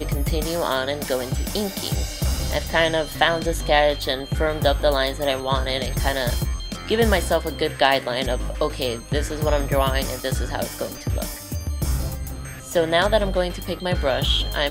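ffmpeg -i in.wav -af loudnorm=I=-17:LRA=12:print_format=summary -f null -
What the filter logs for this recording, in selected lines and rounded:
Input Integrated:    -22.6 LUFS
Input True Peak:      -2.0 dBTP
Input LRA:             3.4 LU
Input Threshold:     -32.7 LUFS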